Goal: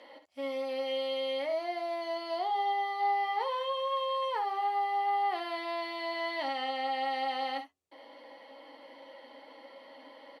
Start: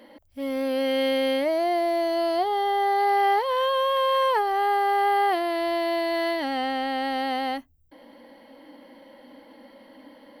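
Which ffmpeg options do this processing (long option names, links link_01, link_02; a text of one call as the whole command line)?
ffmpeg -i in.wav -af "bandreject=frequency=1600:width=6.8,alimiter=level_in=2.5dB:limit=-24dB:level=0:latency=1:release=26,volume=-2.5dB,highpass=540,lowpass=6700,aecho=1:1:11|62|72:0.501|0.316|0.251" out.wav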